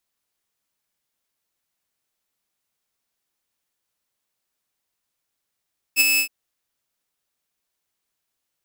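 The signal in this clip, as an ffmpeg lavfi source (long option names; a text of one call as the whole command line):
ffmpeg -f lavfi -i "aevalsrc='0.355*(2*mod(2610*t,1)-1)':duration=0.319:sample_rate=44100,afade=type=in:duration=0.045,afade=type=out:start_time=0.045:duration=0.02:silence=0.562,afade=type=out:start_time=0.23:duration=0.089" out.wav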